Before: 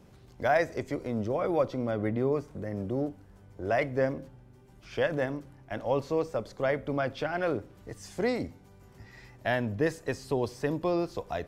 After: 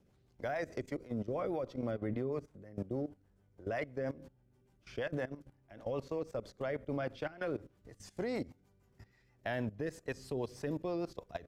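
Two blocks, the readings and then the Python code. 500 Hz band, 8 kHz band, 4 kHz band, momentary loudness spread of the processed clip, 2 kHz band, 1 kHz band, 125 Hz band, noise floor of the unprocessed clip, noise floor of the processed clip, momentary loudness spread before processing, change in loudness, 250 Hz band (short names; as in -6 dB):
-9.0 dB, n/a, -9.0 dB, 9 LU, -10.0 dB, -11.5 dB, -7.5 dB, -55 dBFS, -70 dBFS, 12 LU, -8.5 dB, -7.5 dB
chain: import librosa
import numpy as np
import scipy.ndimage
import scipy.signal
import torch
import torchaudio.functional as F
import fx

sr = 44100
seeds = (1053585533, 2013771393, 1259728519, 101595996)

y = fx.rotary(x, sr, hz=6.3)
y = fx.level_steps(y, sr, step_db=17)
y = y * 10.0 ** (-1.5 / 20.0)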